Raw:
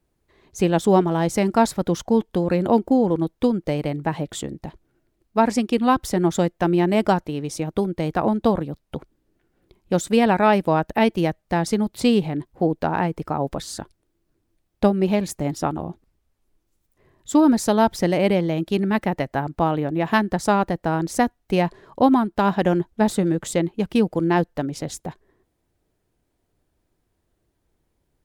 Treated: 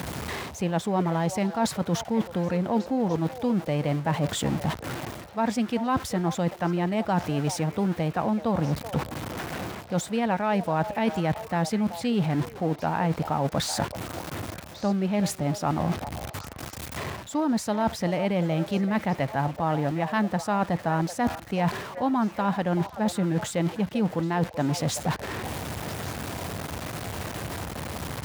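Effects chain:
converter with a step at zero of −31.5 dBFS
parametric band 360 Hz −7.5 dB 0.77 octaves
reversed playback
downward compressor 10 to 1, threshold −30 dBFS, peak gain reduction 17.5 dB
reversed playback
high-pass filter 74 Hz 24 dB per octave
high-shelf EQ 4,300 Hz −7.5 dB
on a send: echo through a band-pass that steps 381 ms, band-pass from 660 Hz, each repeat 1.4 octaves, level −8.5 dB
on the sum: level +8 dB

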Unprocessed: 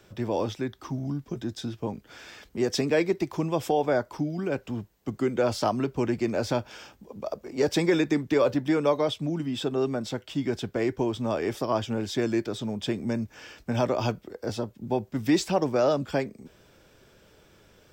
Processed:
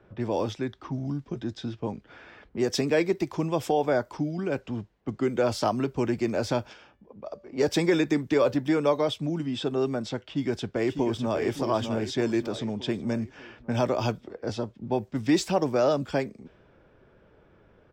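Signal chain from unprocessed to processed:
0:10.27–0:11.44: delay throw 600 ms, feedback 50%, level −7 dB
low-pass that shuts in the quiet parts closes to 1,500 Hz, open at −23.5 dBFS
0:06.73–0:07.53: tuned comb filter 580 Hz, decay 0.52 s, mix 50%

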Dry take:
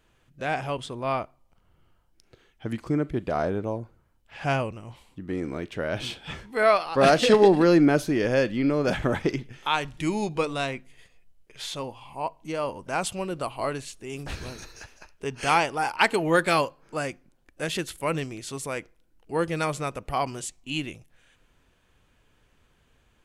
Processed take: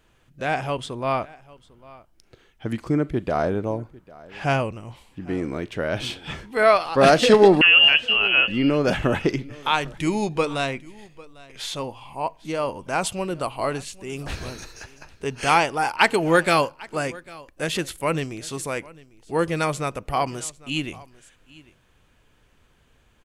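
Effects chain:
0:07.61–0:08.48: voice inversion scrambler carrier 3,100 Hz
single-tap delay 799 ms −22 dB
level +3.5 dB

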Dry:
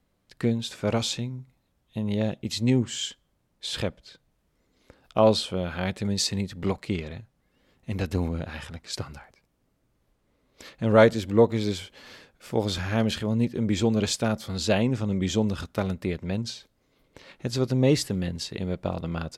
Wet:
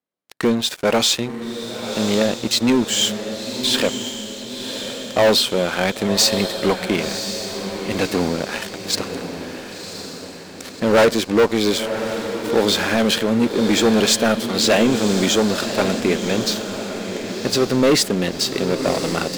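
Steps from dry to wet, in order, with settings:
high-pass filter 270 Hz 12 dB per octave
leveller curve on the samples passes 5
on a send: feedback delay with all-pass diffusion 1,064 ms, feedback 50%, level −8 dB
on the sum: level −4.5 dB

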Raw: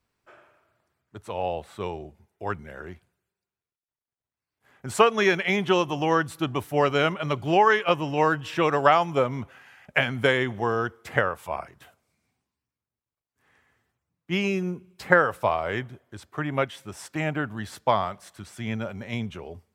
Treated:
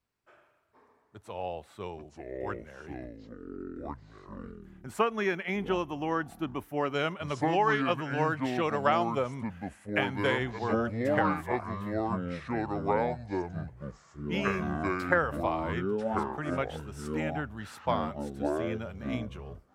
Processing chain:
0:04.87–0:06.94: graphic EQ with 10 bands 125 Hz −5 dB, 250 Hz +5 dB, 500 Hz −3 dB, 4,000 Hz −7 dB, 8,000 Hz −6 dB
delay with pitch and tempo change per echo 357 ms, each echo −6 semitones, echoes 2
level −7.5 dB

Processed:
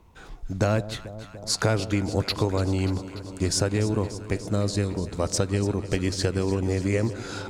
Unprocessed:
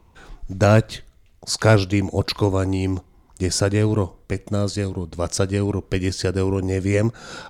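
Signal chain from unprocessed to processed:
downward compressor 5 to 1, threshold −19 dBFS, peak gain reduction 9.5 dB
harmonic generator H 3 −29 dB, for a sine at −8.5 dBFS
delay that swaps between a low-pass and a high-pass 146 ms, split 890 Hz, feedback 87%, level −13.5 dB

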